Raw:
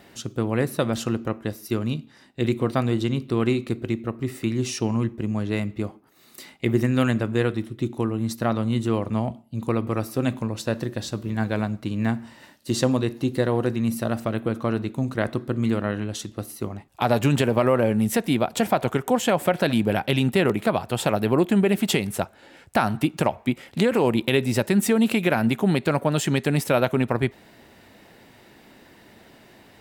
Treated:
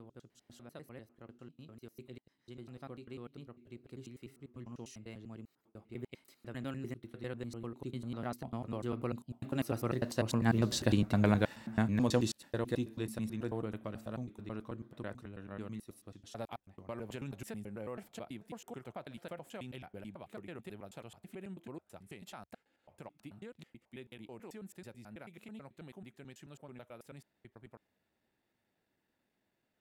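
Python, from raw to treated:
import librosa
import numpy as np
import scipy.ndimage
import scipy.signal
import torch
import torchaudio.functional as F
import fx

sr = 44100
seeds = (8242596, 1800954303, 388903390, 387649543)

y = fx.block_reorder(x, sr, ms=104.0, group=5)
y = fx.doppler_pass(y, sr, speed_mps=16, closest_m=7.2, pass_at_s=10.97)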